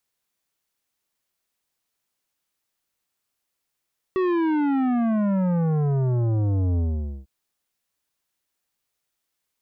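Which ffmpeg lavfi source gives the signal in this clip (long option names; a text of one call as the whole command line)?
ffmpeg -f lavfi -i "aevalsrc='0.0944*clip((3.1-t)/0.48,0,1)*tanh(3.98*sin(2*PI*380*3.1/log(65/380)*(exp(log(65/380)*t/3.1)-1)))/tanh(3.98)':duration=3.1:sample_rate=44100" out.wav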